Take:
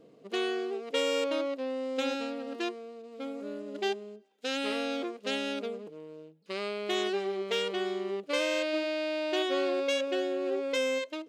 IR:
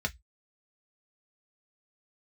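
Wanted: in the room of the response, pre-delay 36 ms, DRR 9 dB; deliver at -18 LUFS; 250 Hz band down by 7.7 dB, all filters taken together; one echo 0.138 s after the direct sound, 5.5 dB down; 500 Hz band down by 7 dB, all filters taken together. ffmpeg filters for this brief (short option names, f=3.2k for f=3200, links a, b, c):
-filter_complex "[0:a]equalizer=f=250:t=o:g=-7.5,equalizer=f=500:t=o:g=-6.5,aecho=1:1:138:0.531,asplit=2[a][b];[1:a]atrim=start_sample=2205,adelay=36[c];[b][c]afir=irnorm=-1:irlink=0,volume=-14.5dB[d];[a][d]amix=inputs=2:normalize=0,volume=16.5dB"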